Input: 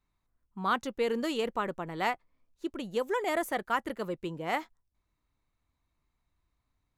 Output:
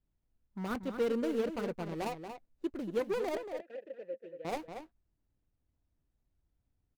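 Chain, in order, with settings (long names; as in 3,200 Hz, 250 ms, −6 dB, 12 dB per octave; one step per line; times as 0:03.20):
running median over 41 samples
0:03.37–0:04.45: formant filter e
slap from a distant wall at 40 metres, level −8 dB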